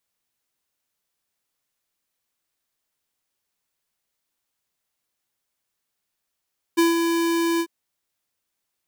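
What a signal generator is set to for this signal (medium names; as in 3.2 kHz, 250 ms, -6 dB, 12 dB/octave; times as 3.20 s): ADSR square 335 Hz, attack 18 ms, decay 156 ms, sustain -5.5 dB, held 0.83 s, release 65 ms -16 dBFS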